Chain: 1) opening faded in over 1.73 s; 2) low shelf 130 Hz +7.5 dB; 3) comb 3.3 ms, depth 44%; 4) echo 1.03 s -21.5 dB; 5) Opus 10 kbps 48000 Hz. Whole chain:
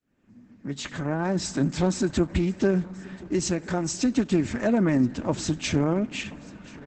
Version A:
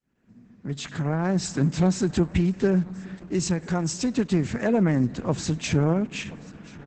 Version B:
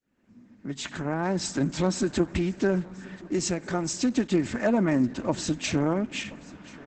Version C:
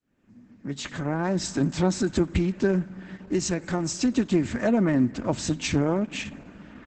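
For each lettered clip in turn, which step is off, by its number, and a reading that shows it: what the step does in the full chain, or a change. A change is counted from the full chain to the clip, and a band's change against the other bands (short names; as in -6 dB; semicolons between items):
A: 3, 125 Hz band +4.0 dB; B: 2, 125 Hz band -3.0 dB; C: 4, momentary loudness spread change -2 LU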